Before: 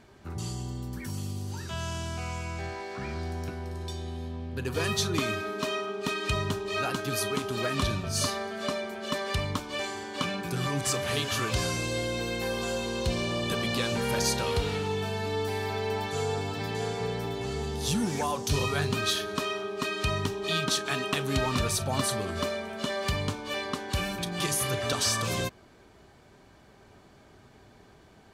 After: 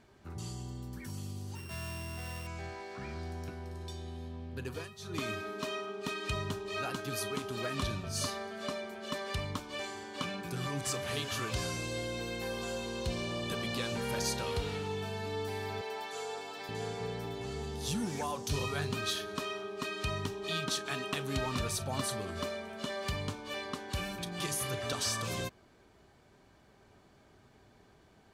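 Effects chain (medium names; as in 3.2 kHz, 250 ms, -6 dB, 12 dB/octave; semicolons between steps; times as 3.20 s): 1.55–2.47 s: sorted samples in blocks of 16 samples; 4.55–5.34 s: dip -16.5 dB, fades 0.35 s equal-power; 15.81–16.69 s: high-pass 470 Hz 12 dB/octave; trim -6.5 dB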